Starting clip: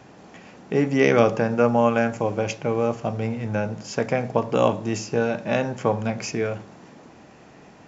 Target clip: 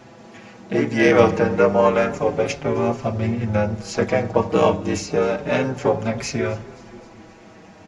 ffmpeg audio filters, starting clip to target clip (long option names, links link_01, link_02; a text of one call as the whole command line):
ffmpeg -i in.wav -filter_complex "[0:a]asplit=3[link_01][link_02][link_03];[link_02]asetrate=37084,aresample=44100,atempo=1.18921,volume=-5dB[link_04];[link_03]asetrate=66075,aresample=44100,atempo=0.66742,volume=-17dB[link_05];[link_01][link_04][link_05]amix=inputs=3:normalize=0,asplit=5[link_06][link_07][link_08][link_09][link_10];[link_07]adelay=261,afreqshift=-41,volume=-22dB[link_11];[link_08]adelay=522,afreqshift=-82,volume=-26.6dB[link_12];[link_09]adelay=783,afreqshift=-123,volume=-31.2dB[link_13];[link_10]adelay=1044,afreqshift=-164,volume=-35.7dB[link_14];[link_06][link_11][link_12][link_13][link_14]amix=inputs=5:normalize=0,asplit=2[link_15][link_16];[link_16]adelay=5.5,afreqshift=-0.3[link_17];[link_15][link_17]amix=inputs=2:normalize=1,volume=5dB" out.wav